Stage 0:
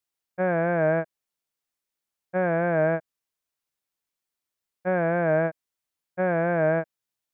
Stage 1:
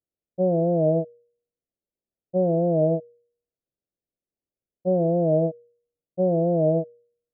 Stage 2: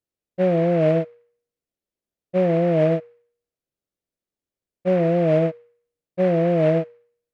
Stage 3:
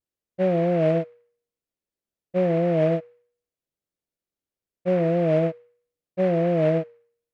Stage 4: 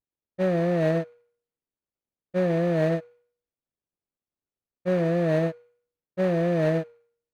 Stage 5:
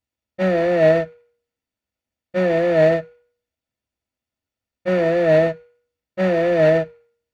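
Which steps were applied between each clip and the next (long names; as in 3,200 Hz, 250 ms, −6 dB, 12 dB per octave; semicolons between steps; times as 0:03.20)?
Butterworth low-pass 620 Hz 36 dB per octave; hum removal 119 Hz, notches 5; level +4.5 dB
short delay modulated by noise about 1,400 Hz, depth 0.032 ms; level +2.5 dB
pitch vibrato 0.38 Hz 23 cents; level −2.5 dB
running median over 41 samples; level −1 dB
convolution reverb RT60 0.10 s, pre-delay 3 ms, DRR 9 dB; level +1.5 dB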